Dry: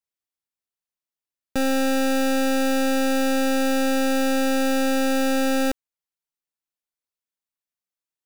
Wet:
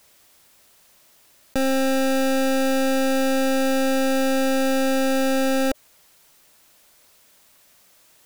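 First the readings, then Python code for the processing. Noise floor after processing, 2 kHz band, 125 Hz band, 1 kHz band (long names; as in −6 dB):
−56 dBFS, 0.0 dB, can't be measured, +0.5 dB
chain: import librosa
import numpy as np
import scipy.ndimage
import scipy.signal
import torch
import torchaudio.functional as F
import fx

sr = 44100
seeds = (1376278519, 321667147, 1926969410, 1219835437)

y = fx.peak_eq(x, sr, hz=600.0, db=5.5, octaves=0.27)
y = fx.env_flatten(y, sr, amount_pct=50)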